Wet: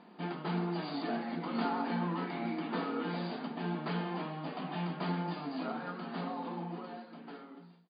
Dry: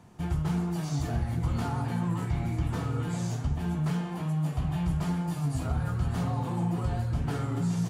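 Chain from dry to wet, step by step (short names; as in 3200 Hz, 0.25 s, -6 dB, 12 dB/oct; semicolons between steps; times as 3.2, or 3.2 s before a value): ending faded out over 2.62 s; brick-wall FIR band-pass 180–4900 Hz; gain +1.5 dB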